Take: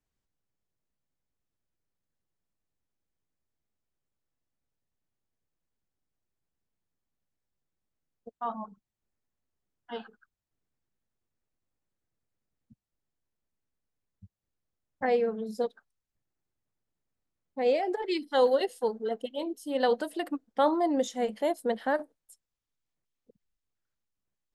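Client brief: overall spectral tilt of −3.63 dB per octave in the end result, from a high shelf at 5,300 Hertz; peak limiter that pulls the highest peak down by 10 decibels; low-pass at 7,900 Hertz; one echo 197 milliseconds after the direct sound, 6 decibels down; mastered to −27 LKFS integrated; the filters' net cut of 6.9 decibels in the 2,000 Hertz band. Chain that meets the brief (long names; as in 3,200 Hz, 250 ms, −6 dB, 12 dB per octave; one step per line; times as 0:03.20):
low-pass filter 7,900 Hz
parametric band 2,000 Hz −8.5 dB
high-shelf EQ 5,300 Hz −3.5 dB
brickwall limiter −23.5 dBFS
single-tap delay 197 ms −6 dB
level +6.5 dB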